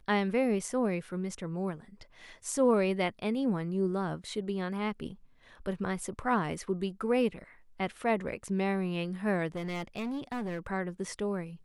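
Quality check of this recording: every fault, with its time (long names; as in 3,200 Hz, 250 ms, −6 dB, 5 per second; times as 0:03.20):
0:09.55–0:10.67: clipping −32 dBFS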